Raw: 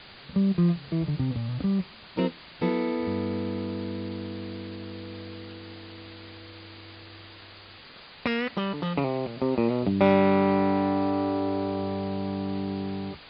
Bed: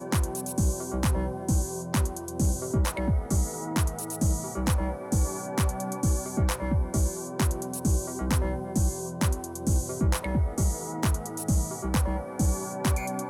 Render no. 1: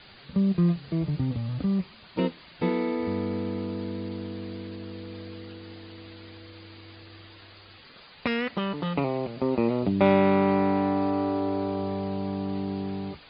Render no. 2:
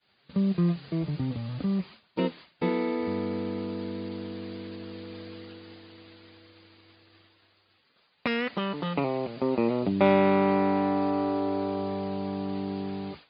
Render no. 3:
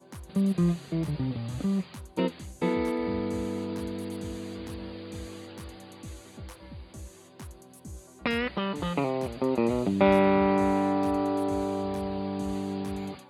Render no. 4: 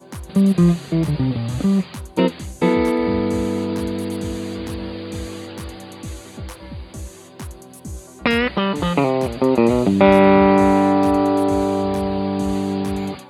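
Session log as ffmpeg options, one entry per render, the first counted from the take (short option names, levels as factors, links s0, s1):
-af "afftdn=nr=6:nf=-48"
-af "agate=range=0.0224:threshold=0.0112:ratio=3:detection=peak,highpass=f=150:p=1"
-filter_complex "[1:a]volume=0.126[s0];[0:a][s0]amix=inputs=2:normalize=0"
-af "volume=3.35,alimiter=limit=0.891:level=0:latency=1"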